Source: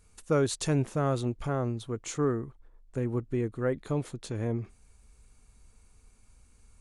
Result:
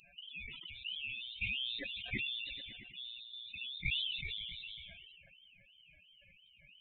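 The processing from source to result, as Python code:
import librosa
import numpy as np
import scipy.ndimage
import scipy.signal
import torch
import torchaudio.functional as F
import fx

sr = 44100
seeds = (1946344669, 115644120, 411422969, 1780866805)

p1 = fx.highpass(x, sr, hz=48.0, slope=6)
p2 = fx.high_shelf(p1, sr, hz=2700.0, db=6.0)
p3 = fx.over_compress(p2, sr, threshold_db=-38.0, ratio=-1.0)
p4 = fx.wah_lfo(p3, sr, hz=2.9, low_hz=750.0, high_hz=1700.0, q=5.6)
p5 = fx.spec_topn(p4, sr, count=8)
p6 = p5 + fx.echo_stepped(p5, sr, ms=110, hz=170.0, octaves=0.7, feedback_pct=70, wet_db=-5, dry=0)
p7 = (np.kron(p6[::8], np.eye(8)[0]) * 8)[:len(p6)]
p8 = fx.freq_invert(p7, sr, carrier_hz=3900)
p9 = fx.sustainer(p8, sr, db_per_s=26.0)
y = F.gain(torch.from_numpy(p9), 13.5).numpy()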